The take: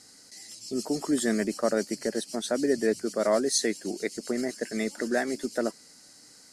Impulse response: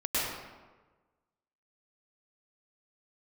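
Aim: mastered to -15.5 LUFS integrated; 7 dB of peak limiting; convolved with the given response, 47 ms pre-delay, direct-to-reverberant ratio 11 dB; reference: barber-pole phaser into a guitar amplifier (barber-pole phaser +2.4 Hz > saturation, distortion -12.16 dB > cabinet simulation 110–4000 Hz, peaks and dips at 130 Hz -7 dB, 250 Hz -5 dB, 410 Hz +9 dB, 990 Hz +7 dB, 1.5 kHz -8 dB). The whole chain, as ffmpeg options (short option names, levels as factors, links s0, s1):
-filter_complex "[0:a]alimiter=limit=0.112:level=0:latency=1,asplit=2[s0][s1];[1:a]atrim=start_sample=2205,adelay=47[s2];[s1][s2]afir=irnorm=-1:irlink=0,volume=0.0944[s3];[s0][s3]amix=inputs=2:normalize=0,asplit=2[s4][s5];[s5]afreqshift=2.4[s6];[s4][s6]amix=inputs=2:normalize=1,asoftclip=threshold=0.0376,highpass=110,equalizer=f=130:t=q:w=4:g=-7,equalizer=f=250:t=q:w=4:g=-5,equalizer=f=410:t=q:w=4:g=9,equalizer=f=990:t=q:w=4:g=7,equalizer=f=1500:t=q:w=4:g=-8,lowpass=f=4000:w=0.5412,lowpass=f=4000:w=1.3066,volume=8.91"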